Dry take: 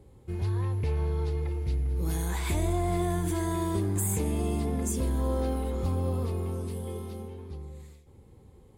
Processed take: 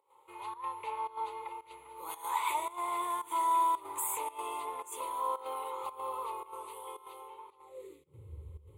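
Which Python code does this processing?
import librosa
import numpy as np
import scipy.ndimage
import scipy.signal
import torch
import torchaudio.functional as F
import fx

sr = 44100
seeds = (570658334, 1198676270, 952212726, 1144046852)

y = fx.fixed_phaser(x, sr, hz=1100.0, stages=8)
y = fx.filter_sweep_highpass(y, sr, from_hz=890.0, to_hz=74.0, start_s=7.64, end_s=8.33, q=6.4)
y = fx.volume_shaper(y, sr, bpm=112, per_beat=1, depth_db=-15, release_ms=98.0, shape='slow start')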